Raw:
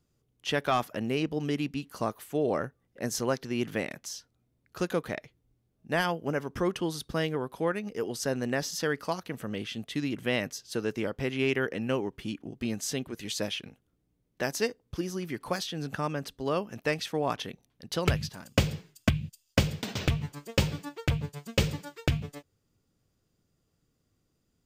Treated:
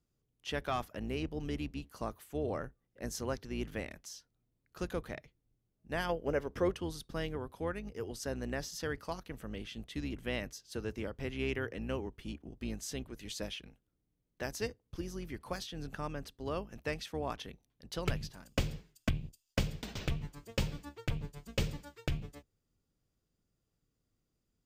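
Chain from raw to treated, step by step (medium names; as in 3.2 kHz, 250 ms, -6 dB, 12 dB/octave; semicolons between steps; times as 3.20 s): octave divider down 2 oct, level -2 dB; 6.09–6.74 s: ten-band graphic EQ 500 Hz +9 dB, 2 kHz +4 dB, 4 kHz +3 dB; trim -8.5 dB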